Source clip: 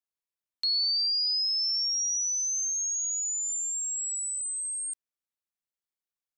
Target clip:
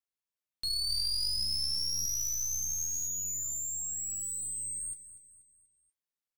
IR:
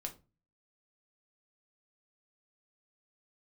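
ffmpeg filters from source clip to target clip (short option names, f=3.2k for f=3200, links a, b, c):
-filter_complex "[0:a]flanger=delay=8.4:depth=7.9:regen=-52:speed=0.73:shape=triangular,aeval=exprs='clip(val(0),-1,0.0126)':c=same,asettb=1/sr,asplit=3[a][b][c];[a]atrim=end=0.894[d];[b]atrim=start=0.89:end=3.08,asetpts=PTS-STARTPTS,afade=t=in:d=0.004:c=qsin,afade=t=out:st=2.186:d=0.004:c=qsin,aphaser=in_gain=1:out_gain=1:delay=3.4:decay=0.34:speed=1.7:type=triangular[e];[c]atrim=start=3.076[f];[d][e]acrossfade=d=0.004:c1=hsin:c2=qsin[g];[g][f]acrossfade=d=0.004:c1=qsin:c2=hsin,aecho=1:1:241|482|723|964:0.2|0.0878|0.0386|0.017,volume=1dB"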